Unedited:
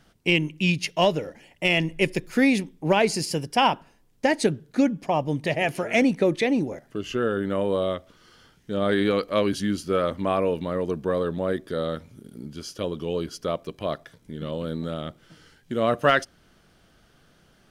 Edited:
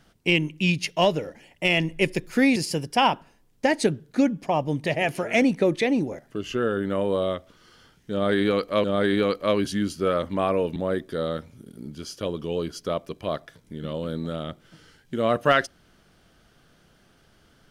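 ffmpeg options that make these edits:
-filter_complex "[0:a]asplit=4[s0][s1][s2][s3];[s0]atrim=end=2.562[s4];[s1]atrim=start=3.158:end=9.442[s5];[s2]atrim=start=8.718:end=10.642[s6];[s3]atrim=start=11.338[s7];[s4][s5]acrossfade=d=0.004:c1=hsin:c2=hsin[s8];[s8][s6]acrossfade=d=0.004:c1=hsin:c2=hsin[s9];[s9][s7]acrossfade=d=0.004:c1=hsin:c2=hsin"

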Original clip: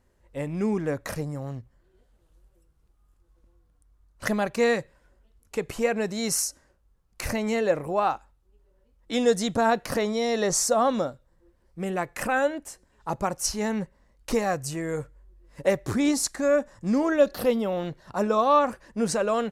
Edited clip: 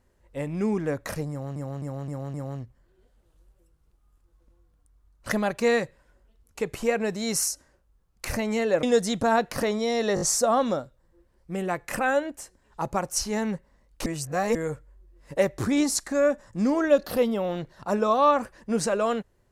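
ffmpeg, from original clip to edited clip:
-filter_complex "[0:a]asplit=11[s0][s1][s2][s3][s4][s5][s6][s7][s8][s9][s10];[s0]atrim=end=1.562[s11];[s1]atrim=start=1.298:end=1.562[s12];[s2]atrim=start=1.298:end=1.562[s13];[s3]atrim=start=1.298:end=1.562[s14];[s4]atrim=start=1.298:end=7.792[s15];[s5]atrim=start=9.168:end=10.512[s16];[s6]atrim=start=10.488:end=10.512[s17];[s7]atrim=start=10.488:end=10.512[s18];[s8]atrim=start=10.488:end=14.342[s19];[s9]atrim=start=14.338:end=14.832,asetpts=PTS-STARTPTS,areverse[s20];[s10]atrim=start=14.828[s21];[s11][s12]acrossfade=d=0.004:c1=hsin:c2=hsin[s22];[s22][s13]acrossfade=d=0.004:c1=hsin:c2=hsin[s23];[s23][s14]acrossfade=d=0.004:c1=hsin:c2=hsin[s24];[s24][s15]acrossfade=d=0.004:c1=hsin:c2=hsin[s25];[s25][s16]acrossfade=d=0.004:c1=hsin:c2=hsin[s26];[s26][s17]acrossfade=d=0.004:c1=hsin:c2=hsin[s27];[s27][s18]acrossfade=d=0.004:c1=hsin:c2=hsin[s28];[s28][s19]acrossfade=d=0.004:c1=hsin:c2=hsin[s29];[s29][s20]acrossfade=d=0.004:c1=hsin:c2=hsin[s30];[s30][s21]acrossfade=d=0.004:c1=hsin:c2=hsin"

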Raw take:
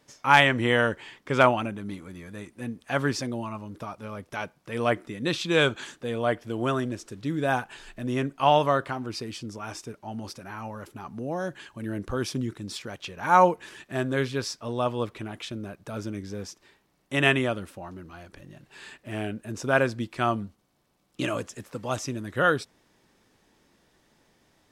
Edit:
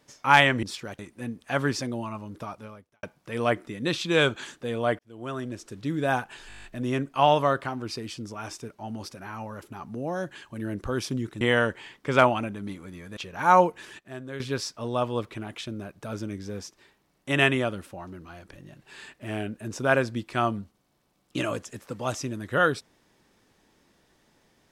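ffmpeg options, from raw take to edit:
-filter_complex "[0:a]asplit=17[s0][s1][s2][s3][s4][s5][s6][s7][s8][s9][s10][s11][s12][s13][s14][s15][s16];[s0]atrim=end=0.632[s17];[s1]atrim=start=12.648:end=13.012[s18];[s2]atrim=start=2.388:end=4.43,asetpts=PTS-STARTPTS,afade=t=out:st=1.572:d=0.47:c=qua[s19];[s3]atrim=start=4.43:end=6.39,asetpts=PTS-STARTPTS,afade=t=in:d=0.004:c=hsin,afade=t=out:st=1.956:d=0.004:c=hsin[s20];[s4]atrim=start=6.39:end=7.902,asetpts=PTS-STARTPTS,afade=t=in:d=0.77[s21];[s5]atrim=start=7.878:end=7.902[s22];[s6]atrim=start=7.878:end=7.902[s23];[s7]atrim=start=7.878:end=7.902[s24];[s8]atrim=start=7.878:end=7.902[s25];[s9]atrim=start=7.878:end=7.902[s26];[s10]atrim=start=7.878:end=7.902[s27];[s11]atrim=start=7.878:end=7.902[s28];[s12]atrim=start=7.878:end=12.652[s29];[s13]atrim=start=0.628:end=2.392[s30];[s14]atrim=start=13.008:end=13.832[s31];[s15]atrim=start=13.828:end=14.242,asetpts=PTS-STARTPTS,volume=0.282[s32];[s16]atrim=start=14.238[s33];[s17][s18]acrossfade=d=0.004:c1=hsin:c2=hsin[s34];[s19][s20][s21]concat=n=3:v=0:a=1[s35];[s34][s35]acrossfade=d=0.004:c1=hsin:c2=hsin[s36];[s36][s22]acrossfade=d=0.004:c1=hsin:c2=hsin[s37];[s37][s23]acrossfade=d=0.004:c1=hsin:c2=hsin[s38];[s38][s24]acrossfade=d=0.004:c1=hsin:c2=hsin[s39];[s39][s25]acrossfade=d=0.004:c1=hsin:c2=hsin[s40];[s40][s26]acrossfade=d=0.004:c1=hsin:c2=hsin[s41];[s41][s27]acrossfade=d=0.004:c1=hsin:c2=hsin[s42];[s42][s28]acrossfade=d=0.004:c1=hsin:c2=hsin[s43];[s43][s29]acrossfade=d=0.004:c1=hsin:c2=hsin[s44];[s44][s30]acrossfade=d=0.004:c1=hsin:c2=hsin[s45];[s45][s31]acrossfade=d=0.004:c1=hsin:c2=hsin[s46];[s46][s32]acrossfade=d=0.004:c1=hsin:c2=hsin[s47];[s47][s33]acrossfade=d=0.004:c1=hsin:c2=hsin"

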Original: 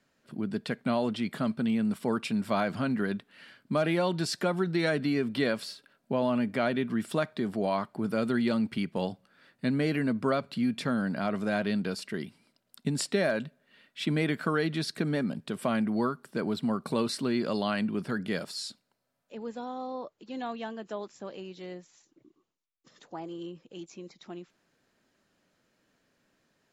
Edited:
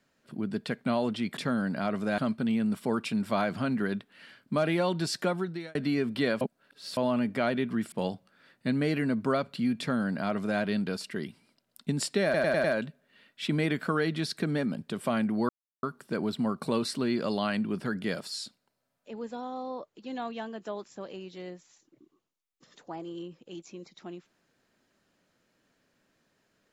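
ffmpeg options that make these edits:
-filter_complex "[0:a]asplit=12[s0][s1][s2][s3][s4][s5][s6][s7][s8][s9][s10][s11];[s0]atrim=end=1.372[s12];[s1]atrim=start=10.768:end=11.582[s13];[s2]atrim=start=1.368:end=4.94,asetpts=PTS-STARTPTS,afade=t=out:st=3.092:d=0.48[s14];[s3]atrim=start=4.94:end=5.602,asetpts=PTS-STARTPTS,afade=t=in:d=0.004:c=hsin[s15];[s4]atrim=start=5.598:end=6.162,asetpts=PTS-STARTPTS,areverse[s16];[s5]atrim=start=6.158:end=7.112[s17];[s6]atrim=start=8.898:end=13.322[s18];[s7]atrim=start=13.218:end=13.322[s19];[s8]atrim=start=13.218:end=13.322[s20];[s9]atrim=start=13.218:end=13.322[s21];[s10]atrim=start=13.218:end=16.07,asetpts=PTS-STARTPTS,afade=t=out:st=2.848:d=0.004:c=hsin,apad=pad_dur=0.34[s22];[s11]atrim=start=16.07,asetpts=PTS-STARTPTS,afade=t=in:d=0.004:c=hsin[s23];[s12][s13]acrossfade=d=0.004:c1=hsin:c2=hsin[s24];[s14][s15]concat=n=2:v=0:a=1[s25];[s24][s25]acrossfade=d=0.004:c1=hsin:c2=hsin[s26];[s26][s16]acrossfade=d=0.004:c1=hsin:c2=hsin[s27];[s27][s17]acrossfade=d=0.004:c1=hsin:c2=hsin[s28];[s28][s18]acrossfade=d=0.004:c1=hsin:c2=hsin[s29];[s29][s19]acrossfade=d=0.004:c1=hsin:c2=hsin[s30];[s30][s20]acrossfade=d=0.004:c1=hsin:c2=hsin[s31];[s31][s21]acrossfade=d=0.004:c1=hsin:c2=hsin[s32];[s22][s23]concat=n=2:v=0:a=1[s33];[s32][s33]acrossfade=d=0.004:c1=hsin:c2=hsin"

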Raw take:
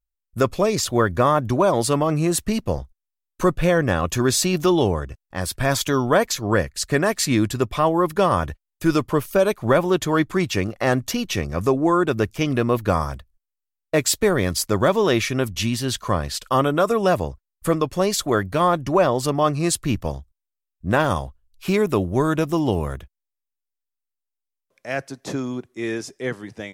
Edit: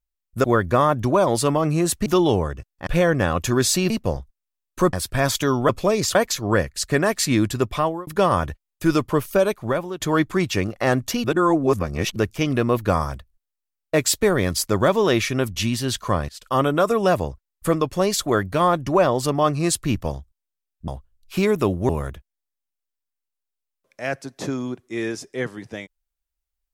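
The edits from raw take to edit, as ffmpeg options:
-filter_complex "[0:a]asplit=15[s0][s1][s2][s3][s4][s5][s6][s7][s8][s9][s10][s11][s12][s13][s14];[s0]atrim=end=0.442[s15];[s1]atrim=start=0.898:end=2.522[s16];[s2]atrim=start=4.578:end=5.392[s17];[s3]atrim=start=3.548:end=4.582[s18];[s4]atrim=start=2.518:end=3.552[s19];[s5]atrim=start=5.388:end=6.152[s20];[s6]atrim=start=0.438:end=0.902[s21];[s7]atrim=start=6.148:end=8.07,asetpts=PTS-STARTPTS,afade=t=out:st=1.612:d=0.31[s22];[s8]atrim=start=8.07:end=10,asetpts=PTS-STARTPTS,afade=t=in:d=0.004:c=hsin,afade=t=out:st=1.29:d=0.64:silence=0.16788[s23];[s9]atrim=start=10:end=11.242,asetpts=PTS-STARTPTS,afade=t=in:d=0.004:c=hsin:silence=0.16788[s24];[s10]atrim=start=11.238:end=12.162,asetpts=PTS-STARTPTS,areverse[s25];[s11]atrim=start=12.158:end=16.29,asetpts=PTS-STARTPTS,afade=t=out:st=4.128:d=0.004:c=hsin:silence=0.0668344[s26];[s12]atrim=start=16.29:end=20.882,asetpts=PTS-STARTPTS,afade=t=in:d=0.33:silence=0.0668344[s27];[s13]atrim=start=21.188:end=22.202[s28];[s14]atrim=start=22.748[s29];[s15][s16]acrossfade=d=0.004:c1=hsin:c2=hsin[s30];[s30][s17]acrossfade=d=0.004:c1=hsin:c2=hsin[s31];[s31][s18]acrossfade=d=0.004:c1=hsin:c2=hsin[s32];[s32][s19]acrossfade=d=0.004:c1=hsin:c2=hsin[s33];[s33][s20]acrossfade=d=0.004:c1=hsin:c2=hsin[s34];[s34][s21]acrossfade=d=0.004:c1=hsin:c2=hsin[s35];[s22][s23][s24]concat=n=3:v=0:a=1[s36];[s35][s36]acrossfade=d=0.004:c1=hsin:c2=hsin[s37];[s37][s25]acrossfade=d=0.004:c1=hsin:c2=hsin[s38];[s26][s27]concat=n=2:v=0:a=1[s39];[s38][s39]acrossfade=d=0.004:c1=hsin:c2=hsin[s40];[s40][s28]acrossfade=d=0.004:c1=hsin:c2=hsin[s41];[s41][s29]acrossfade=d=0.004:c1=hsin:c2=hsin"

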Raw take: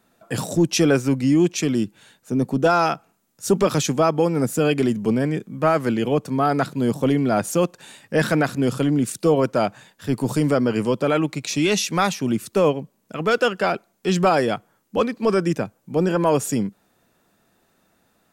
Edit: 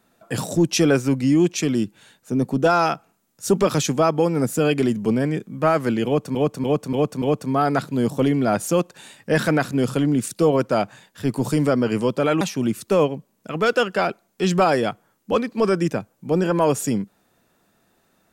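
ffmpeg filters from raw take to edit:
-filter_complex "[0:a]asplit=6[s0][s1][s2][s3][s4][s5];[s0]atrim=end=6.352[s6];[s1]atrim=start=6.058:end=6.352[s7];[s2]atrim=start=6.058:end=6.352[s8];[s3]atrim=start=6.058:end=6.352[s9];[s4]atrim=start=6.058:end=11.252[s10];[s5]atrim=start=12.058[s11];[s6][s7]acrossfade=d=0.004:c1=hsin:c2=hsin[s12];[s12][s8]acrossfade=d=0.004:c1=hsin:c2=hsin[s13];[s13][s9]acrossfade=d=0.004:c1=hsin:c2=hsin[s14];[s14][s10]acrossfade=d=0.004:c1=hsin:c2=hsin[s15];[s15][s11]acrossfade=d=0.004:c1=hsin:c2=hsin"

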